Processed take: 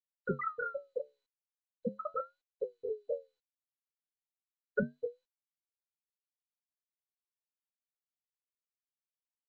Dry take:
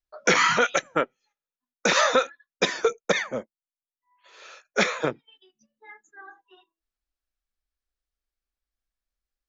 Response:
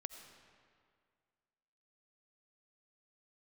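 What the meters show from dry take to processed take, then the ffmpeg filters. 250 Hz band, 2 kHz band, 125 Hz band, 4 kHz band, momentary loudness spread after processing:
−10.0 dB, −20.0 dB, −8.0 dB, below −40 dB, 7 LU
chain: -filter_complex "[0:a]acrusher=bits=6:mode=log:mix=0:aa=0.000001,asplit=2[link_01][link_02];[link_02]adelay=90,lowpass=frequency=1200:poles=1,volume=-11dB,asplit=2[link_03][link_04];[link_04]adelay=90,lowpass=frequency=1200:poles=1,volume=0.39,asplit=2[link_05][link_06];[link_06]adelay=90,lowpass=frequency=1200:poles=1,volume=0.39,asplit=2[link_07][link_08];[link_08]adelay=90,lowpass=frequency=1200:poles=1,volume=0.39[link_09];[link_01][link_03][link_05][link_07][link_09]amix=inputs=5:normalize=0,acrossover=split=220[link_10][link_11];[link_11]acompressor=threshold=-32dB:ratio=1.5[link_12];[link_10][link_12]amix=inputs=2:normalize=0[link_13];[1:a]atrim=start_sample=2205,atrim=end_sample=6615,asetrate=57330,aresample=44100[link_14];[link_13][link_14]afir=irnorm=-1:irlink=0,acrusher=bits=6:mix=0:aa=0.5,afftfilt=real='re*gte(hypot(re,im),0.2)':imag='im*gte(hypot(re,im),0.2)':win_size=1024:overlap=0.75,highpass=frequency=110:width=0.5412,highpass=frequency=110:width=1.3066,flanger=delay=8.6:depth=7.2:regen=-68:speed=0.38:shape=triangular,afftfilt=real='re*lt(hypot(re,im),0.0631)':imag='im*lt(hypot(re,im),0.0631)':win_size=1024:overlap=0.75,aemphasis=mode=reproduction:type=bsi,volume=16.5dB" -ar 16000 -c:a mp2 -b:a 48k

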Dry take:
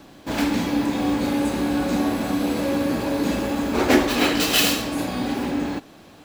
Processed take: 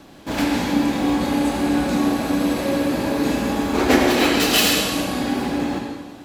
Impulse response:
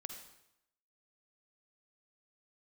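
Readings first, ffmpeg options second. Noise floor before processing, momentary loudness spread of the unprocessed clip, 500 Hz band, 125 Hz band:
−47 dBFS, 8 LU, +2.5 dB, +2.0 dB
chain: -filter_complex "[1:a]atrim=start_sample=2205,asetrate=26901,aresample=44100[link_01];[0:a][link_01]afir=irnorm=-1:irlink=0,volume=3dB"

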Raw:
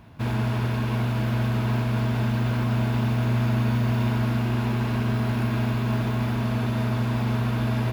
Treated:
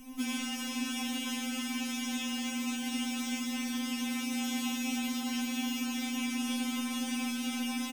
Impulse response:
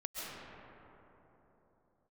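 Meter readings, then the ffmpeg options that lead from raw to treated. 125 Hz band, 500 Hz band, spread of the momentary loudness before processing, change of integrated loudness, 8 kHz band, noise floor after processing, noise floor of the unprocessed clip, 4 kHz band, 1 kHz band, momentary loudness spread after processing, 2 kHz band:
below −35 dB, −19.0 dB, 2 LU, −9.0 dB, can't be measured, −37 dBFS, −26 dBFS, +3.0 dB, −10.0 dB, 2 LU, −4.5 dB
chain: -filter_complex "[0:a]highshelf=frequency=5400:gain=9,bandreject=frequency=50:width_type=h:width=6,bandreject=frequency=100:width_type=h:width=6,aecho=1:1:7.4:0.86,acrossover=split=1400|7300[link_01][link_02][link_03];[link_01]acompressor=threshold=-26dB:ratio=4[link_04];[link_02]acompressor=threshold=-37dB:ratio=4[link_05];[link_03]acompressor=threshold=-58dB:ratio=4[link_06];[link_04][link_05][link_06]amix=inputs=3:normalize=0,equalizer=frequency=125:width_type=o:width=1:gain=5,equalizer=frequency=500:width_type=o:width=1:gain=-12,equalizer=frequency=2000:width_type=o:width=1:gain=-5,equalizer=frequency=4000:width_type=o:width=1:gain=-5,equalizer=frequency=8000:width_type=o:width=1:gain=10,asplit=2[link_07][link_08];[1:a]atrim=start_sample=2205,afade=type=out:start_time=0.36:duration=0.01,atrim=end_sample=16317,adelay=50[link_09];[link_08][link_09]afir=irnorm=-1:irlink=0,volume=-9.5dB[link_10];[link_07][link_10]amix=inputs=2:normalize=0,afftfilt=real='re*3.46*eq(mod(b,12),0)':imag='im*3.46*eq(mod(b,12),0)':win_size=2048:overlap=0.75,volume=5dB"

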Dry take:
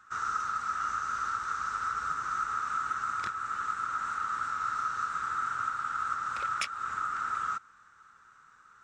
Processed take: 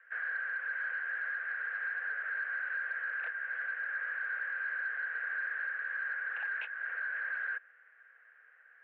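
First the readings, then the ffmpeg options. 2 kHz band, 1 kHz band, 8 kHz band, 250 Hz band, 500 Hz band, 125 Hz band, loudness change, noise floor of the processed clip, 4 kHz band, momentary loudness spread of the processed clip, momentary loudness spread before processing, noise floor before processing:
+6.5 dB, −18.5 dB, below −35 dB, below −30 dB, −2.0 dB, below −40 dB, −3.0 dB, −62 dBFS, below −10 dB, 2 LU, 2 LU, −59 dBFS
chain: -af "acontrast=60,volume=22.5dB,asoftclip=hard,volume=-22.5dB,highpass=frequency=170:width_type=q:width=0.5412,highpass=frequency=170:width_type=q:width=1.307,lowpass=frequency=2400:width_type=q:width=0.5176,lowpass=frequency=2400:width_type=q:width=0.7071,lowpass=frequency=2400:width_type=q:width=1.932,afreqshift=290,volume=-9dB"

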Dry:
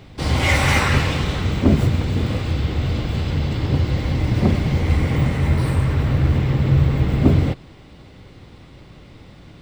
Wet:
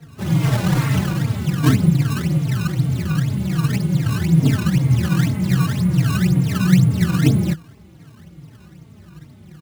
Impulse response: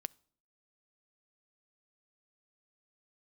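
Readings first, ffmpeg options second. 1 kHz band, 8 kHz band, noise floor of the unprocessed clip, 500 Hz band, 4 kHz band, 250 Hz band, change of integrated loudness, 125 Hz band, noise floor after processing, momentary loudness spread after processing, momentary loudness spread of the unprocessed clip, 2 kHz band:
−4.0 dB, can't be measured, −44 dBFS, −5.5 dB, −3.0 dB, +4.0 dB, +1.0 dB, +1.5 dB, −45 dBFS, 5 LU, 6 LU, −4.5 dB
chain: -filter_complex "[0:a]lowshelf=frequency=170:gain=8.5,afreqshift=49,equalizer=frequency=160:width_type=o:width=0.33:gain=8,equalizer=frequency=315:width_type=o:width=0.33:gain=3,equalizer=frequency=500:width_type=o:width=0.33:gain=-3,acrusher=samples=19:mix=1:aa=0.000001:lfo=1:lforange=30.4:lforate=2,asplit=2[link_01][link_02];[link_02]adelay=3.8,afreqshift=-2.5[link_03];[link_01][link_03]amix=inputs=2:normalize=1,volume=-5dB"

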